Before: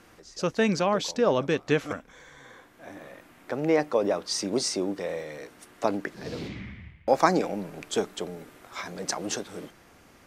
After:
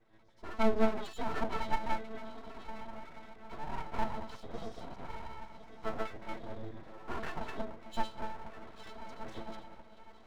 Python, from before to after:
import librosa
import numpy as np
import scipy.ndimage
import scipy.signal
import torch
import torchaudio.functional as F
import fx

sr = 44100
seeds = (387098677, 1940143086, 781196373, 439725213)

y = fx.reverse_delay(x, sr, ms=121, wet_db=0.0)
y = fx.octave_resonator(y, sr, note='A', decay_s=0.27)
y = fx.echo_diffused(y, sr, ms=1198, feedback_pct=41, wet_db=-12.5)
y = np.abs(y)
y = y * 10.0 ** (4.0 / 20.0)